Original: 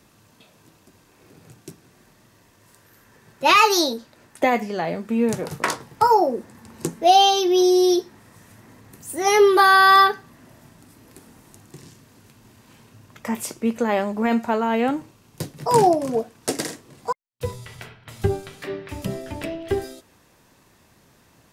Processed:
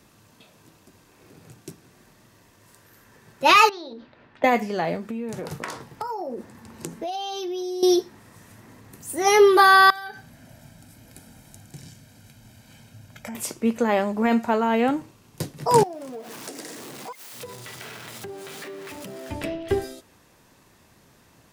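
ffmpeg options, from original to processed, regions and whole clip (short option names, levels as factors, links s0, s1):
-filter_complex "[0:a]asettb=1/sr,asplit=3[s0][s1][s2];[s0]atrim=end=3.694[s3];[s1]atrim=start=3.69:end=4.44,asetpts=PTS-STARTPTS,afade=t=in:d=0.004:c=qsin,afade=t=out:st=0.746:d=0.004:c=qsin,lowpass=f=3600:w=0.5412,lowpass=f=3600:w=1.3066,bandreject=f=50:t=h:w=6,bandreject=f=100:t=h:w=6,bandreject=f=150:t=h:w=6,bandreject=f=200:t=h:w=6,bandreject=f=250:t=h:w=6,bandreject=f=300:t=h:w=6,bandreject=f=350:t=h:w=6,bandreject=f=400:t=h:w=6,acompressor=threshold=0.02:ratio=10:attack=3.2:release=140:knee=1:detection=peak[s4];[s2]atrim=start=4.436[s5];[s3][s4]acrossfade=d=0.004:c1=hsin:c2=qsin[s6];[s6][s5]acrossfade=d=0.004:c1=qsin:c2=hsin,asettb=1/sr,asplit=3[s7][s8][s9];[s7]atrim=end=4.964[s10];[s8]atrim=start=4.96:end=7.83,asetpts=PTS-STARTPTS,afade=t=in:d=0.004:c=qsin,afade=t=out:st=2.866:d=0.004:c=qsin,acompressor=threshold=0.0447:ratio=12:attack=3.2:release=140:knee=1:detection=peak,equalizer=f=10000:t=o:w=1.5:g=-2.5[s11];[s9]atrim=start=7.826[s12];[s10][s11]acrossfade=d=0.004:c1=hsin:c2=qsin[s13];[s13][s12]acrossfade=d=0.004:c1=qsin:c2=hsin,asettb=1/sr,asplit=3[s14][s15][s16];[s14]atrim=end=9.904[s17];[s15]atrim=start=9.9:end=13.35,asetpts=PTS-STARTPTS,afade=t=in:d=0.004:c=qsin,afade=t=out:st=3.446:d=0.004:c=qsin,equalizer=f=1000:t=o:w=0.62:g=-7.5,acompressor=threshold=0.0282:ratio=12:attack=3.2:release=140:knee=1:detection=peak,aecho=1:1:1.3:0.62,atrim=end_sample=152145[s18];[s16]atrim=start=13.346[s19];[s17][s18]acrossfade=d=0.004:c1=hsin:c2=qsin[s20];[s20][s19]acrossfade=d=0.004:c1=qsin:c2=hsin,asettb=1/sr,asplit=3[s21][s22][s23];[s21]atrim=end=15.834[s24];[s22]atrim=start=15.83:end=19.3,asetpts=PTS-STARTPTS,afade=t=in:d=0.004:c=qsin,afade=t=out:st=3.466:d=0.004:c=qsin,aeval=exprs='val(0)+0.5*0.0299*sgn(val(0))':c=same,highpass=210,acompressor=threshold=0.0178:ratio=5:attack=3.2:release=140:knee=1:detection=peak[s25];[s23]atrim=start=19.296[s26];[s24][s25]acrossfade=d=0.004:c1=hsin:c2=qsin[s27];[s27][s26]acrossfade=d=0.004:c1=qsin:c2=hsin"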